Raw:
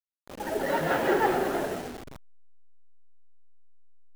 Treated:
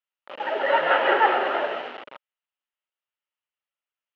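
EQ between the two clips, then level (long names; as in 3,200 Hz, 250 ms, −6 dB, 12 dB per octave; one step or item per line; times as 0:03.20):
loudspeaker in its box 430–3,100 Hz, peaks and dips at 570 Hz +8 dB, 900 Hz +6 dB, 1,300 Hz +8 dB, 1,900 Hz +4 dB, 2,900 Hz +9 dB
high-shelf EQ 2,200 Hz +8 dB
0.0 dB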